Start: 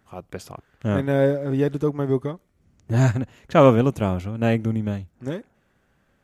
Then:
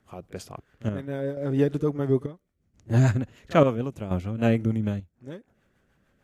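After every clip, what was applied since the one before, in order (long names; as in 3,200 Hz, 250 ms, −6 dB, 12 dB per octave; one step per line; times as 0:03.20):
rotating-speaker cabinet horn 6.7 Hz
echo ahead of the sound 39 ms −21 dB
square-wave tremolo 0.73 Hz, depth 65%, duty 65%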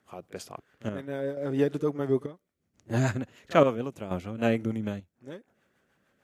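high-pass filter 290 Hz 6 dB per octave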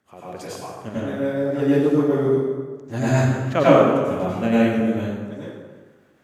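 dense smooth reverb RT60 1.4 s, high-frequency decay 0.65×, pre-delay 80 ms, DRR −9 dB
level −1 dB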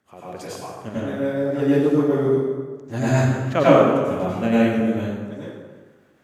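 no processing that can be heard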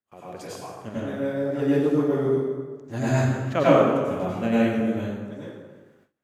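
noise gate with hold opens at −44 dBFS
level −3.5 dB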